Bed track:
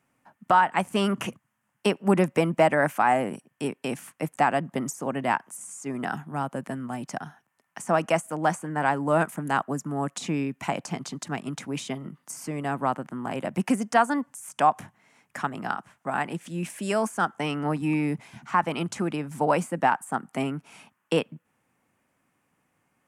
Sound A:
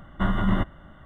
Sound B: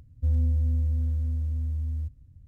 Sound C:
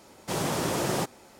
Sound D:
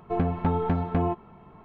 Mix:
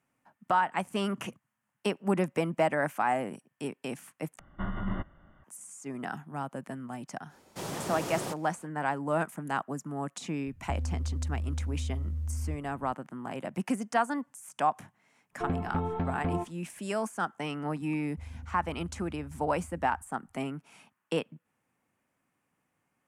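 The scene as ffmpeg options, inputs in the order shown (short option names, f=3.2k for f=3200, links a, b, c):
-filter_complex "[2:a]asplit=2[a][b];[0:a]volume=-6.5dB[c];[1:a]lowpass=f=3k:w=0.5412,lowpass=f=3k:w=1.3066[d];[a]acompressor=threshold=-28dB:ratio=6:attack=3.2:release=140:knee=1:detection=peak[e];[4:a]agate=range=-33dB:threshold=-41dB:ratio=3:release=100:detection=peak[f];[b]tremolo=f=24:d=0.71[g];[c]asplit=2[h][i];[h]atrim=end=4.394[j];[d]atrim=end=1.05,asetpts=PTS-STARTPTS,volume=-10.5dB[k];[i]atrim=start=5.436[l];[3:a]atrim=end=1.39,asetpts=PTS-STARTPTS,volume=-8dB,afade=t=in:d=0.05,afade=t=out:st=1.34:d=0.05,adelay=7280[m];[e]atrim=end=2.47,asetpts=PTS-STARTPTS,volume=-2dB,afade=t=in:d=0.004:c=hsin,afade=t=out:st=2.466:d=0.004:c=hsin,adelay=10470[n];[f]atrim=end=1.64,asetpts=PTS-STARTPTS,volume=-6.5dB,afade=t=in:d=0.004:c=hsin,afade=t=out:st=1.636:d=0.004:c=hsin,adelay=15300[o];[g]atrim=end=2.47,asetpts=PTS-STARTPTS,volume=-17dB,afade=t=in:d=0.004:c=hsin,afade=t=out:st=2.466:d=0.004:c=hsin,adelay=17940[p];[j][k]acrossfade=d=0.004:c1=hsin:c2=hsin[q];[q][l]acrossfade=d=0.004:c1=hsin:c2=hsin[r];[r][m][n][o][p]amix=inputs=5:normalize=0"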